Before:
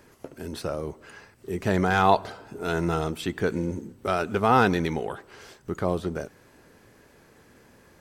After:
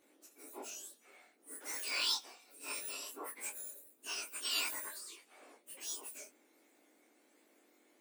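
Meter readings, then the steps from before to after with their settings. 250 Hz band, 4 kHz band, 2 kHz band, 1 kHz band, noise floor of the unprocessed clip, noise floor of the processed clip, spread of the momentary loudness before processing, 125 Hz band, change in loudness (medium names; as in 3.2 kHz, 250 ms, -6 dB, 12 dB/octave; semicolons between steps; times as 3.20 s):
-31.0 dB, +0.5 dB, -13.5 dB, -25.5 dB, -57 dBFS, -70 dBFS, 20 LU, under -40 dB, -13.5 dB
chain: spectrum inverted on a logarithmic axis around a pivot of 1.9 kHz; hum notches 60/120/180/240 Hz; detune thickener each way 51 cents; trim -7 dB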